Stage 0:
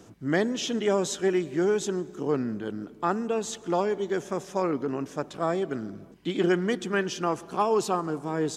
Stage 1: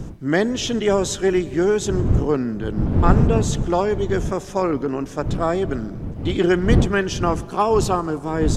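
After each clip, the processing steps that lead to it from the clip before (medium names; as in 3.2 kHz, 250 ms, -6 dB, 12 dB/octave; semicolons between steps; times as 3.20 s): wind noise 160 Hz -29 dBFS; trim +6 dB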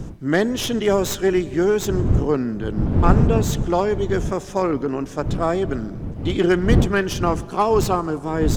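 tracing distortion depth 0.05 ms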